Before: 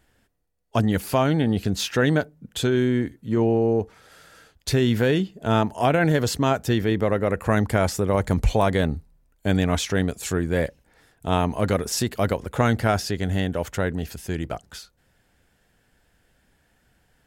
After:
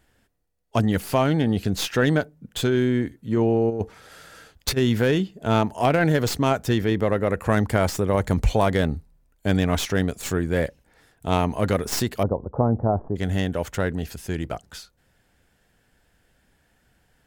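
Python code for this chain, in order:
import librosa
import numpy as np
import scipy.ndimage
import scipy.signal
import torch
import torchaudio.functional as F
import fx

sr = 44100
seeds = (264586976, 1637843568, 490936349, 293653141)

y = fx.tracing_dist(x, sr, depth_ms=0.072)
y = fx.over_compress(y, sr, threshold_db=-24.0, ratio=-0.5, at=(3.69, 4.76), fade=0.02)
y = fx.steep_lowpass(y, sr, hz=1000.0, slope=36, at=(12.23, 13.16))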